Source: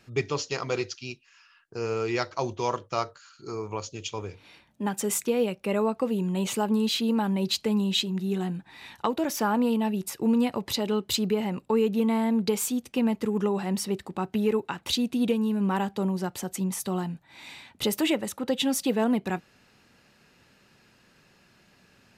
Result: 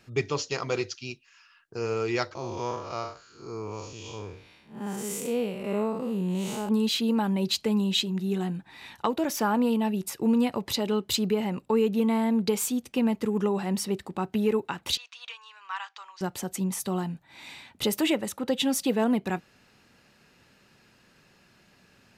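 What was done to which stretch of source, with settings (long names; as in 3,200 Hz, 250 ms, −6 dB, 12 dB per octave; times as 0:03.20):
0:02.35–0:06.69: spectrum smeared in time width 171 ms
0:14.97–0:16.21: elliptic band-pass filter 1,100–6,300 Hz, stop band 60 dB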